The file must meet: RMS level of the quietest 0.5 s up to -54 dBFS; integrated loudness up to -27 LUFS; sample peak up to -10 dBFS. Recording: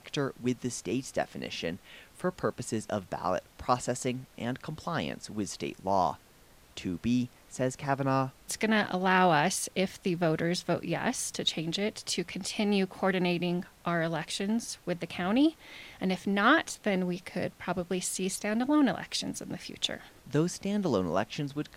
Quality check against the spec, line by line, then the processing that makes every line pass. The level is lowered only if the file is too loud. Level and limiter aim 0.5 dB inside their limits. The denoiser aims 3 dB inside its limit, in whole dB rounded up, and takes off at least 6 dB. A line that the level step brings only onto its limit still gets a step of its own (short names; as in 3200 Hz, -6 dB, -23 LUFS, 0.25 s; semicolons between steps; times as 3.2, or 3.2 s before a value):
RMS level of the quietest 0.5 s -58 dBFS: OK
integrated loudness -30.5 LUFS: OK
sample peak -11.0 dBFS: OK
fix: none